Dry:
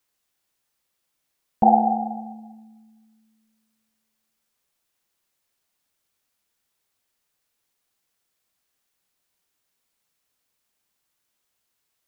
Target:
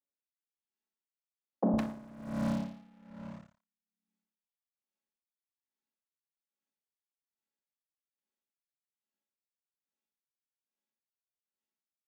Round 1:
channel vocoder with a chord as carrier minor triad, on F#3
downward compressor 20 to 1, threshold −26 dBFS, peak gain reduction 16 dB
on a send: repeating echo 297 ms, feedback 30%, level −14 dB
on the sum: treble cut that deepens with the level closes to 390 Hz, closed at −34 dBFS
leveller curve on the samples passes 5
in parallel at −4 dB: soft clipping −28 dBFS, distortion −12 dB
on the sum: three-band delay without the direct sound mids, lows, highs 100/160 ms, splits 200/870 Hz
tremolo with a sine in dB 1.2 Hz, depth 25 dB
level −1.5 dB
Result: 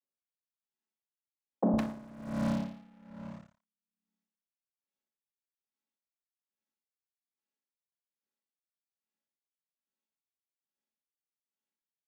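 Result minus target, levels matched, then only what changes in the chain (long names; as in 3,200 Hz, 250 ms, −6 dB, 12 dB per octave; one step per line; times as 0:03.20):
soft clipping: distortion −4 dB
change: soft clipping −35 dBFS, distortion −8 dB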